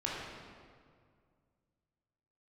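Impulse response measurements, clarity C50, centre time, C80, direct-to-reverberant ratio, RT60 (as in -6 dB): -2.0 dB, 0.113 s, 0.5 dB, -5.5 dB, 2.1 s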